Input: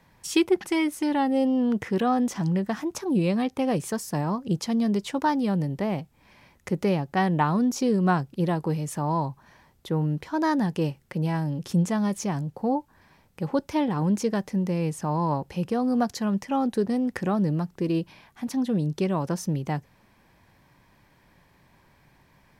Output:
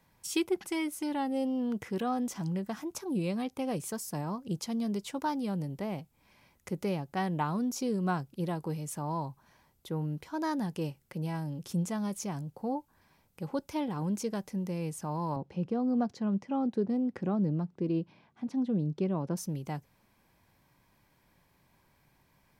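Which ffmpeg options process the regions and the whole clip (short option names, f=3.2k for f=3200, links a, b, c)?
-filter_complex "[0:a]asettb=1/sr,asplit=3[a][b][c];[a]atrim=end=15.364[d];[b]atrim=start=15.36:end=19.37,asetpts=PTS-STARTPTS,afade=t=in:d=0.004:c=qsin,afade=t=out:st=4.006:d=0.004:c=qsin,highpass=130,lowpass=4.4k,tiltshelf=f=710:g=5.5[e];[c]atrim=start=19.366[f];[d][e]acrossfade=d=0.004:c1=hsin:c2=qsin[g];[g][f]acrossfade=d=0.004:c1=qsin:c2=hsin,highshelf=f=7.7k:g=9.5,bandreject=f=1.8k:w=14,volume=-8.5dB"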